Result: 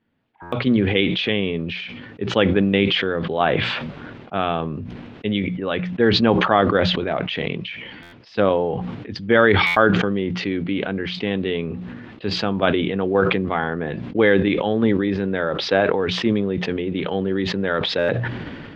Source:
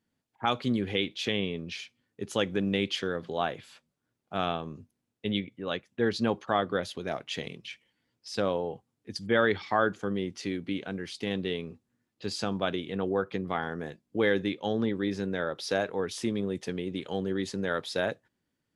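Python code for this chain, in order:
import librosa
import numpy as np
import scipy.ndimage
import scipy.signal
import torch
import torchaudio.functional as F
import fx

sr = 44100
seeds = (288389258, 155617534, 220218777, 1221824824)

p1 = fx.mod_noise(x, sr, seeds[0], snr_db=33)
p2 = fx.level_steps(p1, sr, step_db=9)
p3 = p1 + F.gain(torch.from_numpy(p2), 1.0).numpy()
p4 = scipy.signal.sosfilt(scipy.signal.butter(4, 3200.0, 'lowpass', fs=sr, output='sos'), p3)
p5 = fx.hum_notches(p4, sr, base_hz=60, count=3)
p6 = fx.buffer_glitch(p5, sr, at_s=(0.42, 8.02, 9.66, 17.98), block=512, repeats=8)
p7 = fx.sustainer(p6, sr, db_per_s=31.0)
y = F.gain(torch.from_numpy(p7), 4.5).numpy()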